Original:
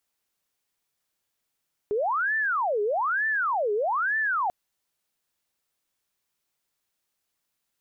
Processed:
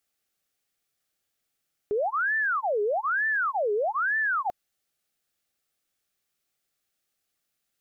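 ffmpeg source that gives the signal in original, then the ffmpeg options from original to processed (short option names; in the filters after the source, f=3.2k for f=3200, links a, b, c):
-f lavfi -i "aevalsrc='0.075*sin(2*PI*(1090*t-680/(2*PI*1.1)*sin(2*PI*1.1*t)))':d=2.59:s=44100"
-af "asuperstop=centerf=970:order=4:qfactor=4.3"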